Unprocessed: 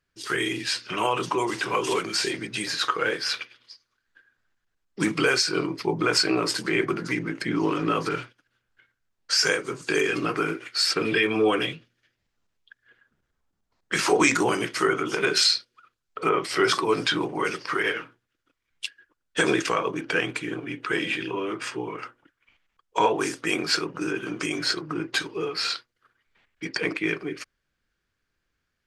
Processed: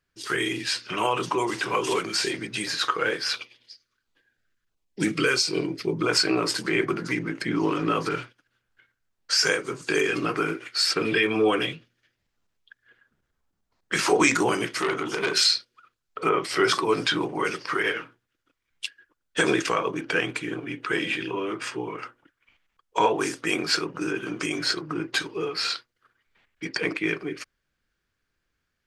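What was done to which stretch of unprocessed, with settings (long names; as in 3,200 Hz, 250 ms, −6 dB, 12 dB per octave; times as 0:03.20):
0:03.36–0:06.09: auto-filter notch saw down 1.5 Hz 670–1,900 Hz
0:14.73–0:15.47: saturating transformer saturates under 2,200 Hz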